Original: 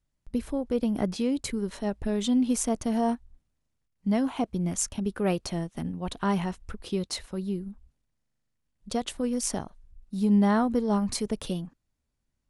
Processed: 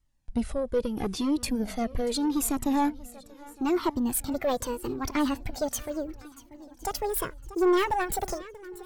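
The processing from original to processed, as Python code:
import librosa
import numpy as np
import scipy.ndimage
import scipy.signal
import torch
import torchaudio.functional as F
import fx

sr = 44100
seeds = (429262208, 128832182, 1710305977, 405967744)

p1 = fx.speed_glide(x, sr, from_pct=93, to_pct=189)
p2 = 10.0 ** (-22.5 / 20.0) * np.tanh(p1 / 10.0 ** (-22.5 / 20.0))
p3 = p2 + fx.echo_swing(p2, sr, ms=1060, ratio=1.5, feedback_pct=30, wet_db=-19, dry=0)
p4 = fx.comb_cascade(p3, sr, direction='falling', hz=0.77)
y = p4 * 10.0 ** (7.5 / 20.0)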